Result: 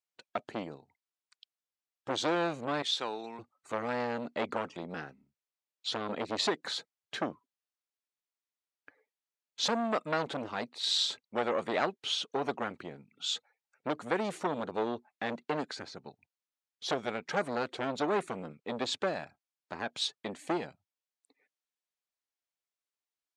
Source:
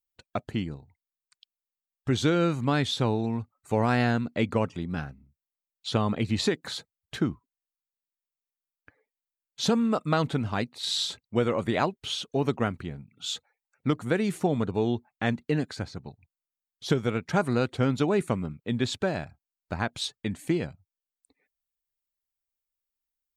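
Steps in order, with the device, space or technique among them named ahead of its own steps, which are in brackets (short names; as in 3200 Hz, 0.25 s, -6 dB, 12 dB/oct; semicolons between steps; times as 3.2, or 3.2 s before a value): 2.82–3.39 HPF 1100 Hz 6 dB/oct; public-address speaker with an overloaded transformer (core saturation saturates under 1100 Hz; BPF 300–6900 Hz)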